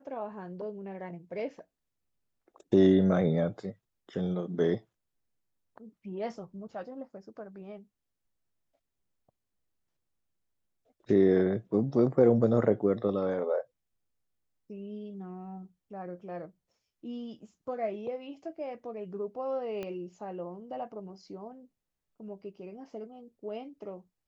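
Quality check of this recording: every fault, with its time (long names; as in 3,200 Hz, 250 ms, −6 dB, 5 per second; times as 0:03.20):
0:19.83: click −24 dBFS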